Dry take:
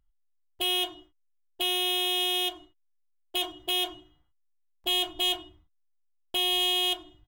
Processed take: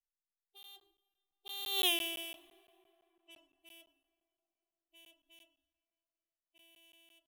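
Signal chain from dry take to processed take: harmonic-percussive separation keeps harmonic; Doppler pass-by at 1.86 s, 31 m/s, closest 1.8 m; peaking EQ 14 kHz +7.5 dB 1.7 oct; hum notches 50/100/150/200/250/300/350/400 Hz; plate-style reverb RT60 3.8 s, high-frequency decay 0.45×, DRR 18.5 dB; crackling interface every 0.17 s, samples 512, zero, from 0.63 s; trim -2.5 dB

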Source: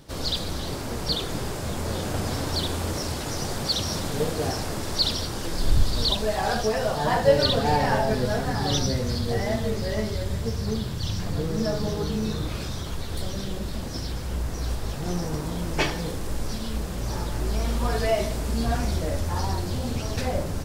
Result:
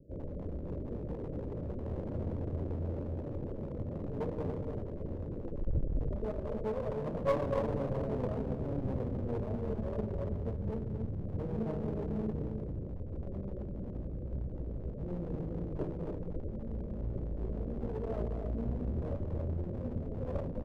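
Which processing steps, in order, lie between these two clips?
steep low-pass 610 Hz 96 dB/octave; loudspeakers at several distances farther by 76 m -11 dB, 96 m -6 dB; one-sided clip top -31 dBFS; feedback delay 60 ms, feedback 60%, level -21.5 dB; trim -7 dB

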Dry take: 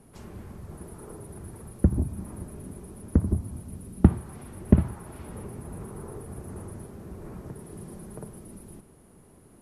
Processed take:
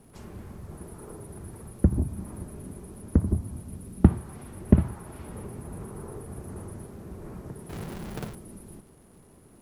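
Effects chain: 7.69–8.35 s: square wave that keeps the level; crackle 230 per s -55 dBFS

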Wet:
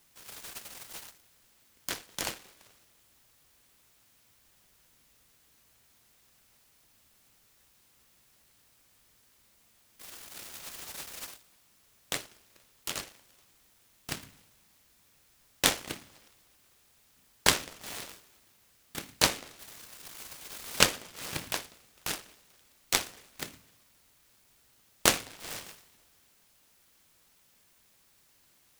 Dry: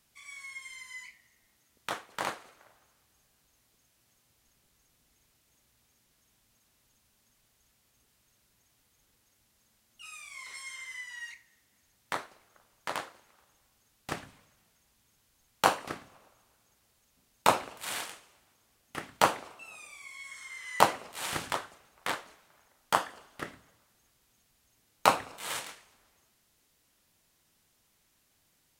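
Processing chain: low-pass that closes with the level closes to 1.9 kHz, closed at -34 dBFS; whistle 3.8 kHz -63 dBFS; delay time shaken by noise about 2.1 kHz, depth 0.36 ms

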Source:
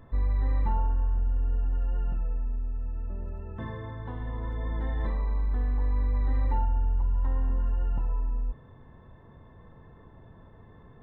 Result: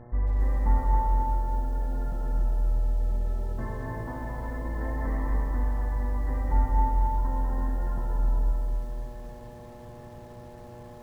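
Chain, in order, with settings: steep low-pass 2.2 kHz 96 dB/octave; band-stop 410 Hz, Q 12; mains buzz 120 Hz, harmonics 7, -49 dBFS -4 dB/octave; reverberation RT60 1.2 s, pre-delay 174 ms, DRR 2.5 dB; bit-crushed delay 270 ms, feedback 35%, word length 9-bit, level -5 dB

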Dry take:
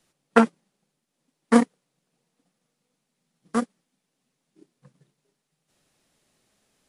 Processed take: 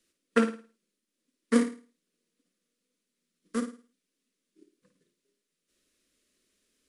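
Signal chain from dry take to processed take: static phaser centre 330 Hz, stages 4; flutter echo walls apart 9.3 m, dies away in 0.37 s; trim -4 dB

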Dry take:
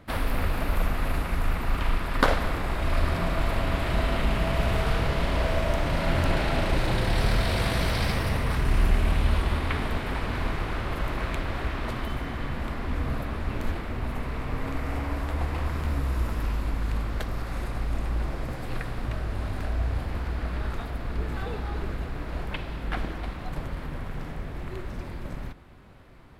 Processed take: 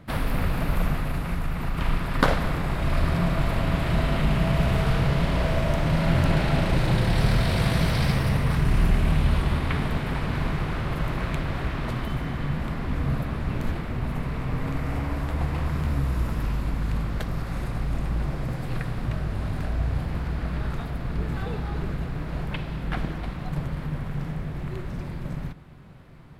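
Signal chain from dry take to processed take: peaking EQ 150 Hz +11 dB 0.75 oct; 0.96–1.77 s: compression 3:1, threshold -23 dBFS, peak gain reduction 5 dB

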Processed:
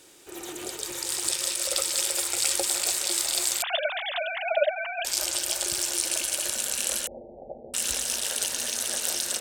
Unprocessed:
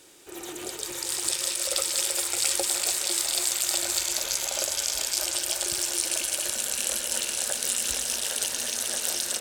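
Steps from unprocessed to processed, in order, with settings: 3.62–5.05 s: formants replaced by sine waves; 7.07–7.74 s: steep low-pass 810 Hz 96 dB/octave

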